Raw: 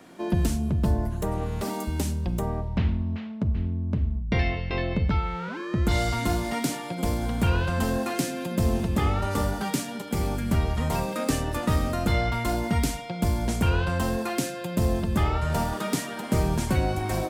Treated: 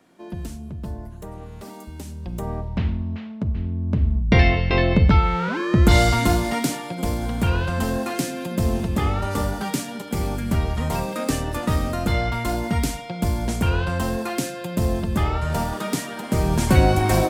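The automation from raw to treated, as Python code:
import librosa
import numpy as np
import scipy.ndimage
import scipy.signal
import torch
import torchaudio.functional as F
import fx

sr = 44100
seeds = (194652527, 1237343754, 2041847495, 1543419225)

y = fx.gain(x, sr, db=fx.line((2.05, -8.5), (2.52, 1.0), (3.63, 1.0), (4.29, 9.0), (5.97, 9.0), (6.92, 2.0), (16.37, 2.0), (16.79, 9.0)))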